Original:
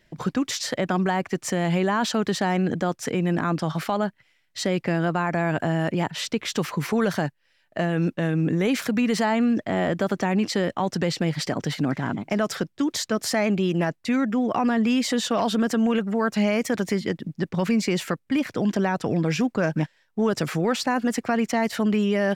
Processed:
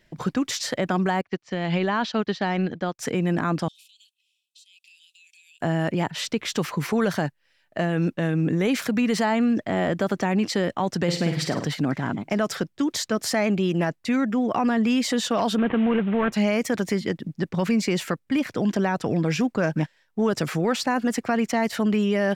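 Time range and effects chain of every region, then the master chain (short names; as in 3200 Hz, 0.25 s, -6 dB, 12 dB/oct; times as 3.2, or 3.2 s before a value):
1.21–2.99 LPF 4700 Hz 24 dB/oct + high shelf 3500 Hz +9 dB + upward expander 2.5:1, over -38 dBFS
3.68–5.61 rippled Chebyshev high-pass 2500 Hz, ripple 6 dB + compressor 8:1, threshold -50 dBFS
11.03–11.67 HPF 47 Hz + flutter echo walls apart 8.9 m, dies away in 0.45 s
15.58–16.32 CVSD 16 kbps + fast leveller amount 50%
whole clip: dry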